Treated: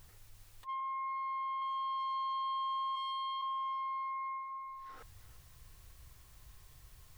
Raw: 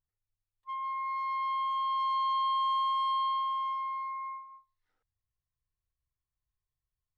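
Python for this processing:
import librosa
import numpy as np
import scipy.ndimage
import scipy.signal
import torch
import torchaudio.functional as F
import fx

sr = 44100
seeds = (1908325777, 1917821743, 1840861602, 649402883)

y = fx.air_absorb(x, sr, metres=280.0, at=(0.8, 1.62))
y = fx.highpass(y, sr, hz=fx.line((2.95, 1400.0), (3.41, 1200.0)), slope=24, at=(2.95, 3.41), fade=0.02)
y = y + 10.0 ** (-20.0 / 20.0) * np.pad(y, (int(343 * sr / 1000.0), 0))[:len(y)]
y = fx.env_flatten(y, sr, amount_pct=70)
y = F.gain(torch.from_numpy(y), -8.0).numpy()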